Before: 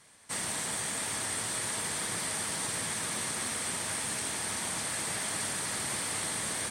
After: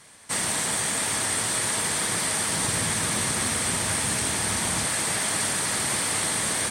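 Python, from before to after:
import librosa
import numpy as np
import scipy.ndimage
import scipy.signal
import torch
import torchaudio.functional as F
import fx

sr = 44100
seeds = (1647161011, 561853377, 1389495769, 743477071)

y = fx.low_shelf(x, sr, hz=140.0, db=10.0, at=(2.52, 4.87))
y = F.gain(torch.from_numpy(y), 8.0).numpy()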